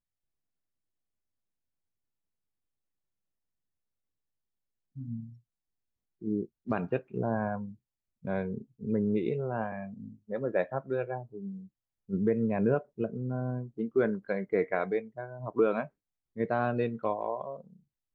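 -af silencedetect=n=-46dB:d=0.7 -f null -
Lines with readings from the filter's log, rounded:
silence_start: 0.00
silence_end: 4.96 | silence_duration: 4.96
silence_start: 5.33
silence_end: 6.22 | silence_duration: 0.88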